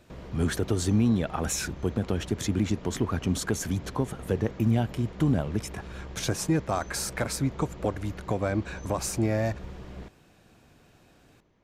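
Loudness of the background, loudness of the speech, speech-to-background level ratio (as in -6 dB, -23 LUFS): -43.0 LUFS, -29.0 LUFS, 14.0 dB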